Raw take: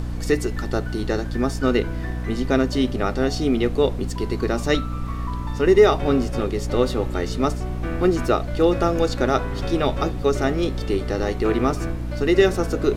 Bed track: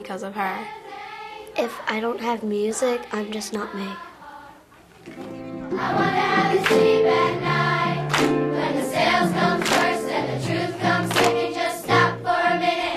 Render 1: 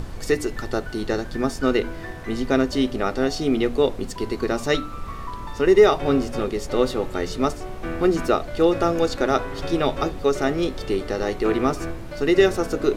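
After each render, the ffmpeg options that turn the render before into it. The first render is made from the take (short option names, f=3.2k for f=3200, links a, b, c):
-af "bandreject=f=60:t=h:w=6,bandreject=f=120:t=h:w=6,bandreject=f=180:t=h:w=6,bandreject=f=240:t=h:w=6,bandreject=f=300:t=h:w=6"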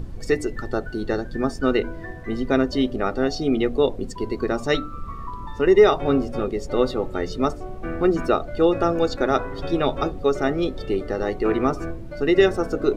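-af "afftdn=nr=12:nf=-35"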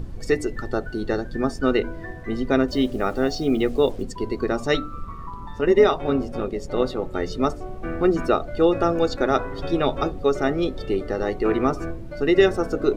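-filter_complex "[0:a]asettb=1/sr,asplit=3[a][b][c];[a]atrim=end=2.684[d];[b]atrim=start=2.68:end=4.03,asetpts=PTS-STARTPTS,afade=t=in:d=0.004:c=qsin,afade=t=out:st=1.346:d=0.004:c=qsin,acrusher=bits=7:mix=0:aa=0.5[e];[c]atrim=start=4.026[f];[d][e]acrossfade=d=0.004:c1=hsin:c2=qsin[g];[g][f]acrossfade=d=0.004:c1=qsin:c2=hsin,asettb=1/sr,asplit=3[h][i][j];[h]atrim=end=5.054[k];[i]atrim=start=5.05:end=7.14,asetpts=PTS-STARTPTS,afade=t=in:d=0.004:c=qsin,afade=t=out:st=2.086:d=0.004:c=qsin,tremolo=f=170:d=0.462[l];[j]atrim=start=7.136[m];[k][l]acrossfade=d=0.004:c1=hsin:c2=qsin[n];[n][m]acrossfade=d=0.004:c1=qsin:c2=hsin"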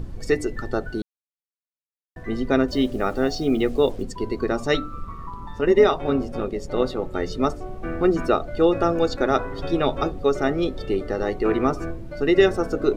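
-filter_complex "[0:a]asplit=3[a][b][c];[a]atrim=end=1.02,asetpts=PTS-STARTPTS,afade=t=out:st=1.016:d=0.004:c=hsin[d];[b]atrim=start=1.02:end=2.16,asetpts=PTS-STARTPTS,volume=0[e];[c]atrim=start=2.16,asetpts=PTS-STARTPTS,afade=t=in:d=0.004:c=hsin[f];[d][e][f]concat=n=3:v=0:a=1"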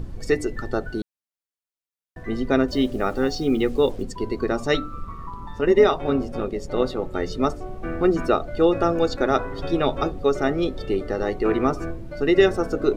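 -filter_complex "[0:a]asettb=1/sr,asplit=3[a][b][c];[a]atrim=end=3.184[d];[b]atrim=start=3.18:end=3.92,asetpts=PTS-STARTPTS,afade=t=in:d=0.004:c=qsin,afade=t=out:st=0.736:d=0.004:c=qsin,asuperstop=centerf=650:order=4:qfactor=5.8[e];[c]atrim=start=3.916[f];[d][e]acrossfade=d=0.004:c1=hsin:c2=qsin[g];[g][f]acrossfade=d=0.004:c1=qsin:c2=hsin"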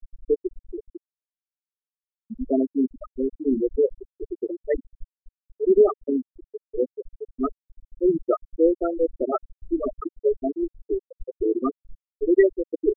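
-af "afftfilt=real='re*gte(hypot(re,im),0.562)':imag='im*gte(hypot(re,im),0.562)':win_size=1024:overlap=0.75,highshelf=f=5.2k:g=11.5"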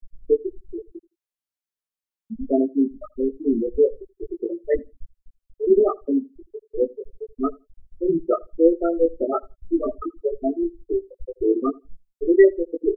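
-filter_complex "[0:a]asplit=2[a][b];[b]adelay=18,volume=-3.5dB[c];[a][c]amix=inputs=2:normalize=0,asplit=2[d][e];[e]adelay=82,lowpass=f=1.1k:p=1,volume=-22.5dB,asplit=2[f][g];[g]adelay=82,lowpass=f=1.1k:p=1,volume=0.17[h];[d][f][h]amix=inputs=3:normalize=0"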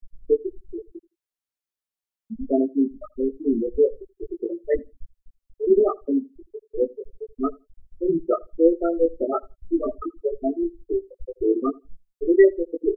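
-af "volume=-1dB"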